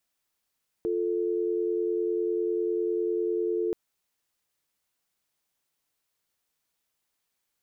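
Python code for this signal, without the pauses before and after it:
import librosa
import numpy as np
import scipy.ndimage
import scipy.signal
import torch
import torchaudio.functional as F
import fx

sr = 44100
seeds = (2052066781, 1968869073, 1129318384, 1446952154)

y = fx.call_progress(sr, length_s=2.88, kind='dial tone', level_db=-27.5)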